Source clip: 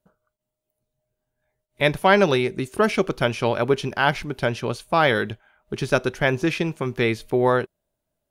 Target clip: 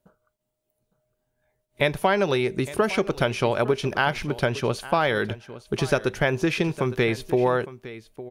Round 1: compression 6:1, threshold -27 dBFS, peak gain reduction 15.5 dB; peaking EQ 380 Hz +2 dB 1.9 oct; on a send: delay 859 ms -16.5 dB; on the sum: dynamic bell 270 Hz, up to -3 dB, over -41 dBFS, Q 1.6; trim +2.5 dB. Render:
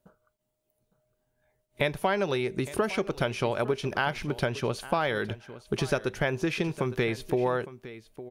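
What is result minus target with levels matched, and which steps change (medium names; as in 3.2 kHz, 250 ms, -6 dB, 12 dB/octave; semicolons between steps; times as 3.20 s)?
compression: peak gain reduction +5.5 dB
change: compression 6:1, threshold -20.5 dBFS, peak gain reduction 10 dB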